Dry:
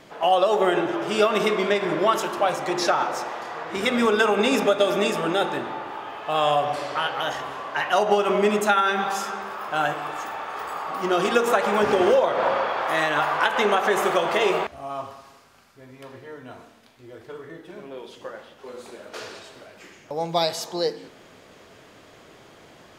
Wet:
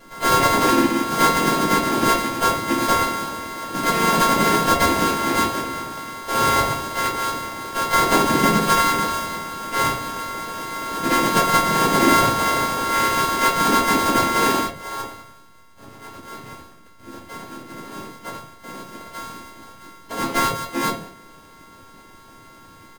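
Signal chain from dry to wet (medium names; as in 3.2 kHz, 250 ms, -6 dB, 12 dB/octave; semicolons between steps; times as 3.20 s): sorted samples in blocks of 64 samples; simulated room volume 120 m³, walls furnished, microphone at 2.5 m; harmony voices -7 st -6 dB, -4 st -1 dB, +7 st -12 dB; trim -6 dB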